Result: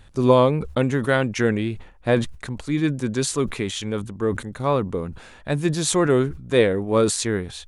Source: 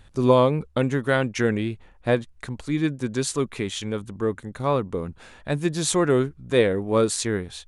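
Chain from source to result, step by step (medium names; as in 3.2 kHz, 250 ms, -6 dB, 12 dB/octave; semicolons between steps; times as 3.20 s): decay stretcher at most 110 dB/s; trim +1.5 dB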